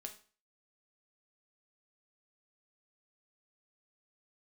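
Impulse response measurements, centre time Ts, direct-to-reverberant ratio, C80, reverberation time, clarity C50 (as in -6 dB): 11 ms, 3.5 dB, 16.5 dB, 0.40 s, 12.0 dB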